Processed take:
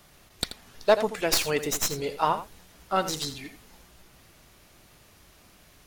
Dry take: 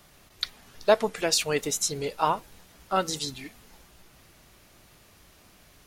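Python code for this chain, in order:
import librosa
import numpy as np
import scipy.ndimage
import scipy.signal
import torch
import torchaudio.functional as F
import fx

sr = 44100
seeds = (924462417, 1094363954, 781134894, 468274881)

y = fx.tracing_dist(x, sr, depth_ms=0.058)
y = y + 10.0 ** (-12.0 / 20.0) * np.pad(y, (int(83 * sr / 1000.0), 0))[:len(y)]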